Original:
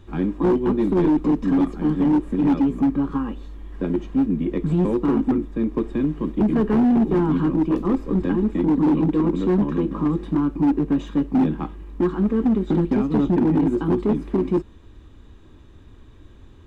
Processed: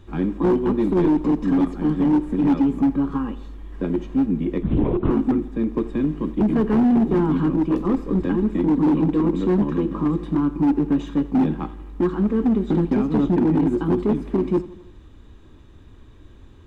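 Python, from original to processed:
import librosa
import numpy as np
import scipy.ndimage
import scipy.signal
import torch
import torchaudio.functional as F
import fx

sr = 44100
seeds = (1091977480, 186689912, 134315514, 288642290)

p1 = x + fx.echo_feedback(x, sr, ms=83, feedback_pct=59, wet_db=-18.5, dry=0)
y = fx.lpc_vocoder(p1, sr, seeds[0], excitation='whisper', order=10, at=(4.63, 5.11))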